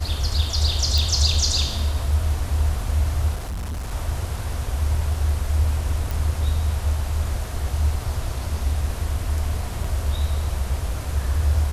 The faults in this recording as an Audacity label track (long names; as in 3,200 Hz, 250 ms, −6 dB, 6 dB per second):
0.980000	0.980000	click
3.350000	3.910000	clipping −25.5 dBFS
6.110000	6.110000	click
9.840000	9.840000	drop-out 4 ms